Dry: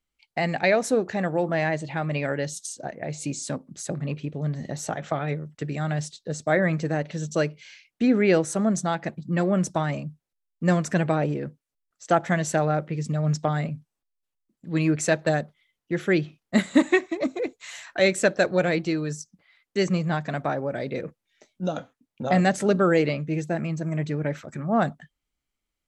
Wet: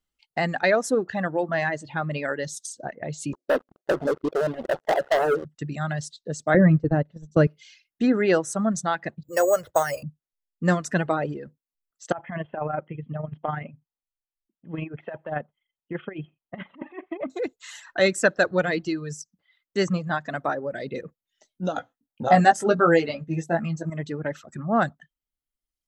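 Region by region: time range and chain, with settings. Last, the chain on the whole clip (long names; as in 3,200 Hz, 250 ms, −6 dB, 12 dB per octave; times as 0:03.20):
0:03.33–0:05.45: flat-topped band-pass 520 Hz, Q 1.3 + leveller curve on the samples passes 5
0:06.54–0:07.47: noise gate −28 dBFS, range −13 dB + spectral tilt −4 dB per octave
0:09.23–0:10.03: drawn EQ curve 110 Hz 0 dB, 200 Hz −22 dB, 510 Hz +10 dB, 1,100 Hz 0 dB, 2,900 Hz +3 dB, 6,800 Hz −18 dB, 11,000 Hz −8 dB + bad sample-rate conversion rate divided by 6×, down none, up hold
0:12.12–0:17.30: compressor whose output falls as the input rises −23 dBFS, ratio −0.5 + amplitude modulation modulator 24 Hz, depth 25% + Chebyshev low-pass with heavy ripple 3,300 Hz, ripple 6 dB
0:21.74–0:23.90: parametric band 780 Hz +8.5 dB 0.28 octaves + double-tracking delay 18 ms −6 dB
whole clip: reverb reduction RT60 1.4 s; notch filter 2,300 Hz, Q 7.2; dynamic equaliser 1,400 Hz, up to +5 dB, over −40 dBFS, Q 1.4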